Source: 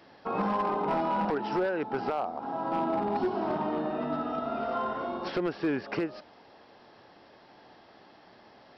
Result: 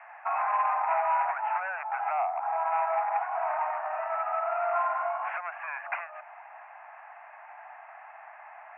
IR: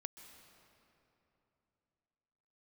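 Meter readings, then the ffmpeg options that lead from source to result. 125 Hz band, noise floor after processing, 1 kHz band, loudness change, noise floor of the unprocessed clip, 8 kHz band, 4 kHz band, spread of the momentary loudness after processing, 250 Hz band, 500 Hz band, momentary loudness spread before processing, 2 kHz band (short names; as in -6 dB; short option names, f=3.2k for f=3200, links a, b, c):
under -40 dB, -49 dBFS, +4.5 dB, +1.5 dB, -56 dBFS, n/a, under -10 dB, 21 LU, under -40 dB, -3.0 dB, 5 LU, +5.0 dB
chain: -filter_complex "[0:a]asplit=2[a][b];[b]acompressor=threshold=-41dB:ratio=6,volume=-1dB[c];[a][c]amix=inputs=2:normalize=0,asoftclip=type=tanh:threshold=-24dB,asuperpass=centerf=1300:order=20:qfactor=0.68,volume=5dB"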